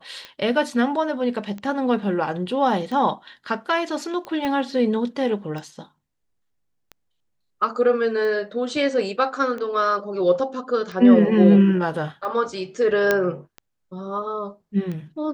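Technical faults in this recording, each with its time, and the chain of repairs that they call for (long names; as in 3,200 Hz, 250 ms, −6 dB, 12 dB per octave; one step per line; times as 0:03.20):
scratch tick 45 rpm −21 dBFS
0:04.45: click −14 dBFS
0:13.11: click −5 dBFS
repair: click removal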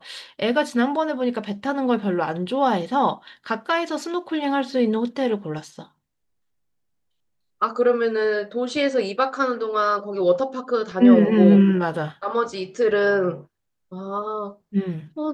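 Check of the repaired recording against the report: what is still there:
0:04.45: click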